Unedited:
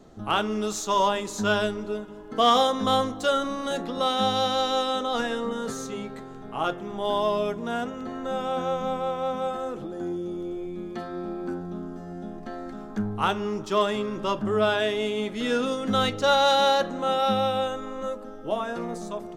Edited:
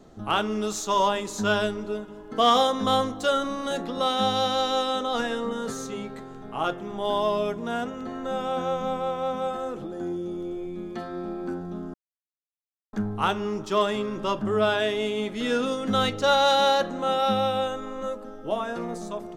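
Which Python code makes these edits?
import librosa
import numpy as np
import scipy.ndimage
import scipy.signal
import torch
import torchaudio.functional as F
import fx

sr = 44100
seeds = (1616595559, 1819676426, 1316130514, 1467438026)

y = fx.edit(x, sr, fx.silence(start_s=11.94, length_s=0.99), tone=tone)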